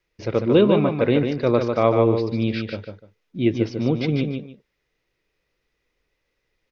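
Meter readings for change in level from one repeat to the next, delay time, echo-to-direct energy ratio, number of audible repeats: −13.0 dB, 148 ms, −5.5 dB, 2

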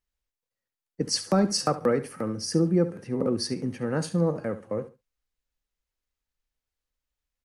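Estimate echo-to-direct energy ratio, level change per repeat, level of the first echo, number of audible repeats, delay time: −14.5 dB, −13.0 dB, −14.5 dB, 2, 70 ms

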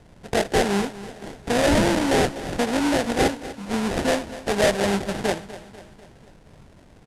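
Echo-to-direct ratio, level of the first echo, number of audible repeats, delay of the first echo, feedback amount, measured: −14.0 dB, −15.5 dB, 4, 246 ms, 52%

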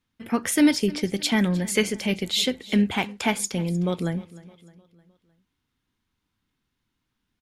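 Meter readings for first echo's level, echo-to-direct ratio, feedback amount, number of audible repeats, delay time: −20.0 dB, −19.0 dB, 48%, 3, 307 ms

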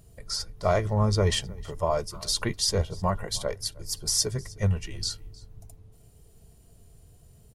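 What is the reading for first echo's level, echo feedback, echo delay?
−23.0 dB, repeats not evenly spaced, 311 ms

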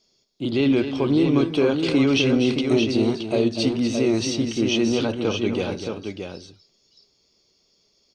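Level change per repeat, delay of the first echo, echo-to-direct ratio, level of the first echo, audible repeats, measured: repeats not evenly spaced, 245 ms, −4.5 dB, −9.5 dB, 2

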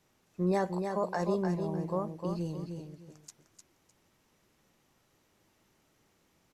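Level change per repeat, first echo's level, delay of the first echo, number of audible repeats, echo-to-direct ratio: −12.5 dB, −6.0 dB, 304 ms, 2, −6.0 dB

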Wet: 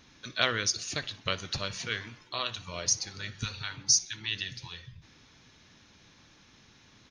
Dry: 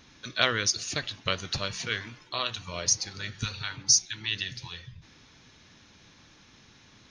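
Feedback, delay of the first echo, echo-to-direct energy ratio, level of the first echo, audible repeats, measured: 47%, 61 ms, −21.0 dB, −22.0 dB, 2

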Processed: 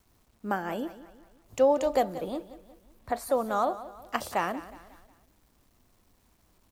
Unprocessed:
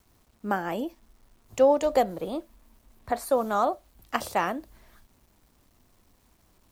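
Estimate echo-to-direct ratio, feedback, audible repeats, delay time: −14.5 dB, 44%, 3, 181 ms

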